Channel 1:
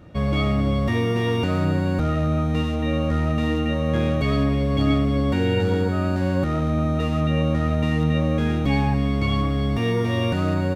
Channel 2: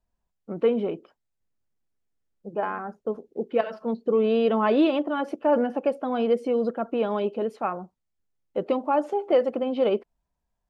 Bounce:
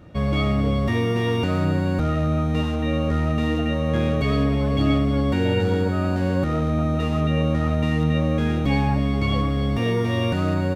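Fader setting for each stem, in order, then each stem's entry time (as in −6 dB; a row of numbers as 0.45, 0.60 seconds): 0.0, −15.5 decibels; 0.00, 0.00 seconds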